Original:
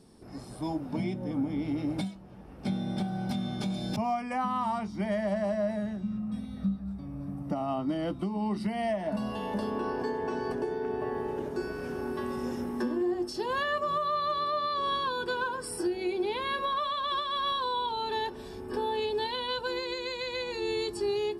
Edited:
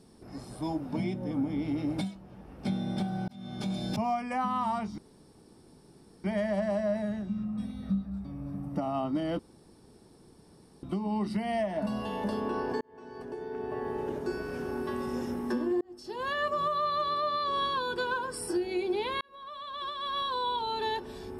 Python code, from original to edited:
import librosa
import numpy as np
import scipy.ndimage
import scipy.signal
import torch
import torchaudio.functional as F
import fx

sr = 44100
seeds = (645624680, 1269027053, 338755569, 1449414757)

y = fx.edit(x, sr, fx.fade_in_span(start_s=3.28, length_s=0.44),
    fx.insert_room_tone(at_s=4.98, length_s=1.26),
    fx.insert_room_tone(at_s=8.13, length_s=1.44),
    fx.fade_in_span(start_s=10.11, length_s=1.23),
    fx.fade_in_span(start_s=13.11, length_s=0.64),
    fx.fade_in_span(start_s=16.51, length_s=1.27), tone=tone)